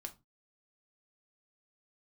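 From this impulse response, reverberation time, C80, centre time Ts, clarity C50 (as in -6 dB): 0.25 s, 25.0 dB, 6 ms, 17.0 dB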